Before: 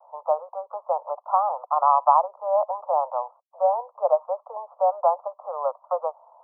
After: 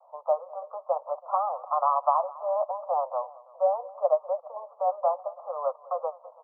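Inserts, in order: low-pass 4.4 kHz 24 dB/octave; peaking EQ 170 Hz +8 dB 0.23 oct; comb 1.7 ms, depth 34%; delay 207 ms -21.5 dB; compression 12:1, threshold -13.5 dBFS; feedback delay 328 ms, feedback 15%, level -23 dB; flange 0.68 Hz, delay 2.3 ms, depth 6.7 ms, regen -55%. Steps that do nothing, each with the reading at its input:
low-pass 4.4 kHz: input has nothing above 1.4 kHz; peaking EQ 170 Hz: input has nothing below 430 Hz

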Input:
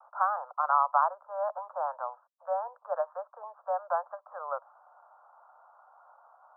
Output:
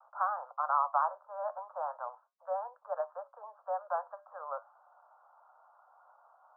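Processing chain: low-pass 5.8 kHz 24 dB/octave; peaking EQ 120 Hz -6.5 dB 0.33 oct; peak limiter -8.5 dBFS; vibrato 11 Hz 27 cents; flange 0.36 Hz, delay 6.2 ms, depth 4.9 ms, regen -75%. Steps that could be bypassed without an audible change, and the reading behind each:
low-pass 5.8 kHz: input has nothing above 1.7 kHz; peaking EQ 120 Hz: input has nothing below 430 Hz; peak limiter -8.5 dBFS: peak at its input -12.0 dBFS

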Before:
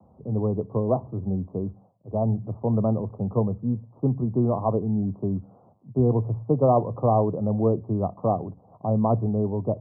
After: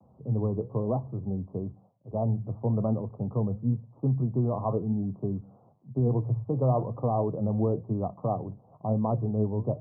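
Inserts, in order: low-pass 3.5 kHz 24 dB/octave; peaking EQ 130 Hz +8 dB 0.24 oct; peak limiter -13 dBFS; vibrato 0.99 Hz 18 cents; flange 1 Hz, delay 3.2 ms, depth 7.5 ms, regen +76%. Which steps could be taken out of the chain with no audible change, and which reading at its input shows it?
low-pass 3.5 kHz: input has nothing above 1.1 kHz

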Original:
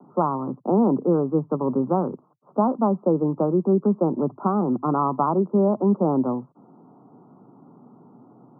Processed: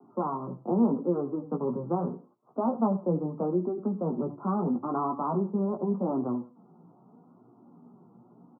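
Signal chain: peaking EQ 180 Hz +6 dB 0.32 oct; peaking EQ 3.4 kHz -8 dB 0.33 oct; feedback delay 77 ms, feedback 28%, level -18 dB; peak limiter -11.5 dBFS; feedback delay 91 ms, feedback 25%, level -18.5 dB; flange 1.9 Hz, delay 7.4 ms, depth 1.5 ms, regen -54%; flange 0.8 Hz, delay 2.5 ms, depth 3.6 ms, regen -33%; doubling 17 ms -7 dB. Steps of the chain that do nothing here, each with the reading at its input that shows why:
peaking EQ 3.4 kHz: input has nothing above 1.4 kHz

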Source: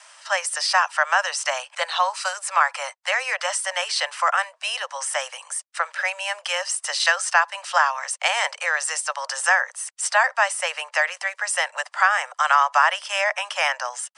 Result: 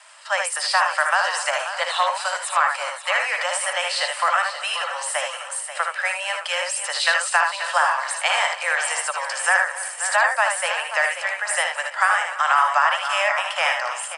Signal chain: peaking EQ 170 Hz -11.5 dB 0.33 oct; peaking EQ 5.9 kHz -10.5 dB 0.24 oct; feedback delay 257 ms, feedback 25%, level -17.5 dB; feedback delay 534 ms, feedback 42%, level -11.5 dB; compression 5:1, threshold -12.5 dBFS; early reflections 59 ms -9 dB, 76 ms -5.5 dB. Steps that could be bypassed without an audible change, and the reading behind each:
peaking EQ 170 Hz: input has nothing below 430 Hz

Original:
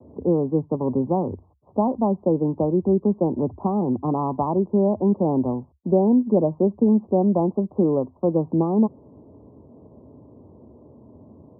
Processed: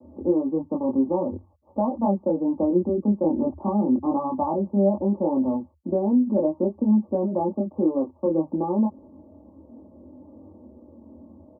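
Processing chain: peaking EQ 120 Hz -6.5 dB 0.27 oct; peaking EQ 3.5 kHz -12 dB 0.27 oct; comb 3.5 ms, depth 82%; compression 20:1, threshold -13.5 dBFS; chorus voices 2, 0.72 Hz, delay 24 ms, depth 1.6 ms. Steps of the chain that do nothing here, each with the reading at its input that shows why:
peaking EQ 3.5 kHz: input has nothing above 1.1 kHz

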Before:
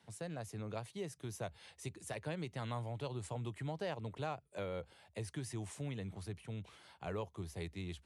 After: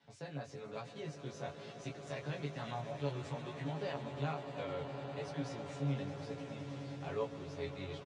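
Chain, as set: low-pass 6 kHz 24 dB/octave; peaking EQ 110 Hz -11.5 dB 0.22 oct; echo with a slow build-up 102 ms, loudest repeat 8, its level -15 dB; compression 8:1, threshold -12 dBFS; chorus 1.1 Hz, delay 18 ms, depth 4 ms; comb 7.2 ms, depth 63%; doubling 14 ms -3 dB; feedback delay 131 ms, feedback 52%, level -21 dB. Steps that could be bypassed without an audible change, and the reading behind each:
compression, threshold -12 dBFS: peak at its input -26.0 dBFS

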